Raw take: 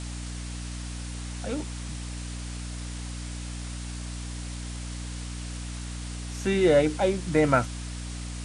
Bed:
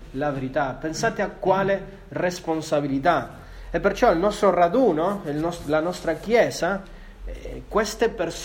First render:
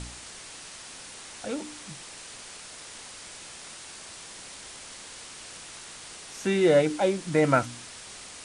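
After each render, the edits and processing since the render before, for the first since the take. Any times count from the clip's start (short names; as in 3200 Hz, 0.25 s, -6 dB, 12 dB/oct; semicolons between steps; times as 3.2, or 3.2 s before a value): de-hum 60 Hz, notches 5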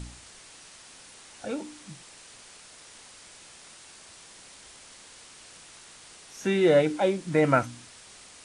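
noise print and reduce 6 dB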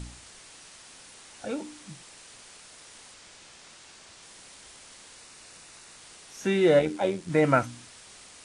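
3.14–4.23 LPF 8000 Hz; 5.16–5.97 notch 3200 Hz, Q 9.8; 6.79–7.3 AM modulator 85 Hz, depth 40%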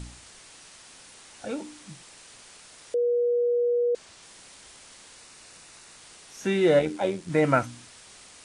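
2.94–3.95 bleep 481 Hz -20.5 dBFS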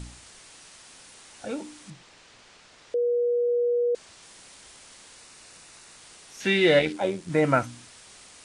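1.9–3.49 air absorption 100 m; 6.4–6.93 band shelf 2900 Hz +9.5 dB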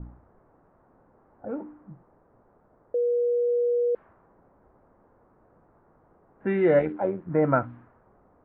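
low-pass opened by the level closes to 690 Hz, open at -19 dBFS; LPF 1500 Hz 24 dB/oct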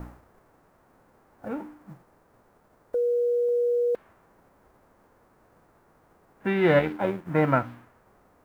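spectral whitening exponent 0.6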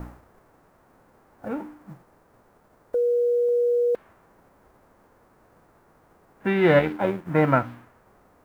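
gain +2.5 dB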